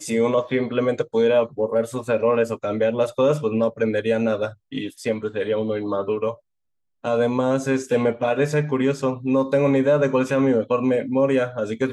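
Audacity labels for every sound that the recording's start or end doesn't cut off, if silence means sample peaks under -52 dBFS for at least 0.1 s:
4.720000	6.400000	sound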